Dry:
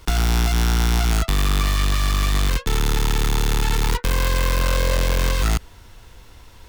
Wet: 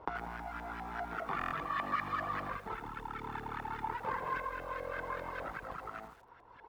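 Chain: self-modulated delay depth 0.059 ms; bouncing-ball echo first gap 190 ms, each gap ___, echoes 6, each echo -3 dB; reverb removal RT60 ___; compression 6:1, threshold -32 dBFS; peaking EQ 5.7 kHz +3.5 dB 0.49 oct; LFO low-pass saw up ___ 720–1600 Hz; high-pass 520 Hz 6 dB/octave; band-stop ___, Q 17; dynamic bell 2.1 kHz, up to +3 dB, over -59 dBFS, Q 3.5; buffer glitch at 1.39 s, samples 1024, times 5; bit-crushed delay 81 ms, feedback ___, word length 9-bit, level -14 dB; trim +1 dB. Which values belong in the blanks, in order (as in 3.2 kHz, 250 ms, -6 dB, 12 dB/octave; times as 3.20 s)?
0.7×, 1.9 s, 5 Hz, 5.9 kHz, 55%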